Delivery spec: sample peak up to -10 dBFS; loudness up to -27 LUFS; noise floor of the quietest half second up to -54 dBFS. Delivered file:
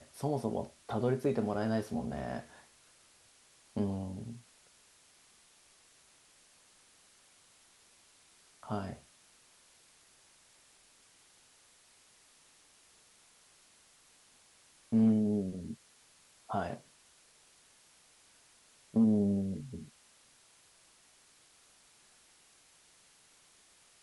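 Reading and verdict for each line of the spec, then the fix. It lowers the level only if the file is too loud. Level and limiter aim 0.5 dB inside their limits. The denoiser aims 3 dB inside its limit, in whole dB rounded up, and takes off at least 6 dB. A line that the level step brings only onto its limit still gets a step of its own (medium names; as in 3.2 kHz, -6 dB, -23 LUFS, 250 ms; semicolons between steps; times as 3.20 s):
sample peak -18.0 dBFS: pass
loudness -34.0 LUFS: pass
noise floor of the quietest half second -64 dBFS: pass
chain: none needed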